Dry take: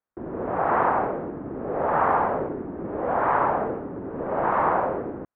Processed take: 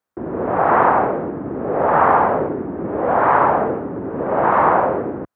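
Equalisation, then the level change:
high-pass filter 66 Hz
+7.5 dB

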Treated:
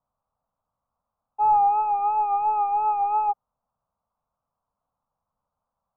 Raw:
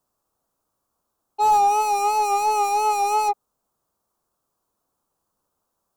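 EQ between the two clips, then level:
linear-phase brick-wall low-pass 2,700 Hz
high-frequency loss of the air 400 metres
phaser with its sweep stopped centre 870 Hz, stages 4
0.0 dB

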